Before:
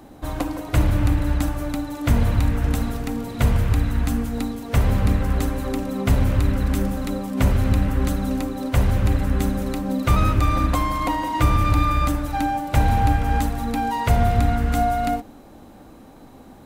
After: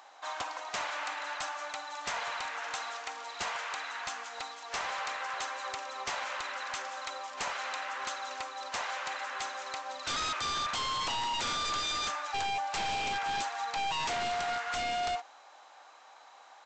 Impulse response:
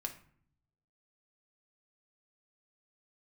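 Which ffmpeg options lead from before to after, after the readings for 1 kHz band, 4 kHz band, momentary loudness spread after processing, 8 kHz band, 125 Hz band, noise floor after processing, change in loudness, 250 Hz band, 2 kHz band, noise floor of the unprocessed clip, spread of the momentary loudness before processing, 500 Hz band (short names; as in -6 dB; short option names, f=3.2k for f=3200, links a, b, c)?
-8.0 dB, +2.0 dB, 7 LU, -3.0 dB, -35.5 dB, -55 dBFS, -12.5 dB, -29.5 dB, -3.0 dB, -45 dBFS, 7 LU, -13.0 dB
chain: -af "highpass=f=810:w=0.5412,highpass=f=810:w=1.3066,aresample=16000,aeval=exprs='0.0398*(abs(mod(val(0)/0.0398+3,4)-2)-1)':c=same,aresample=44100"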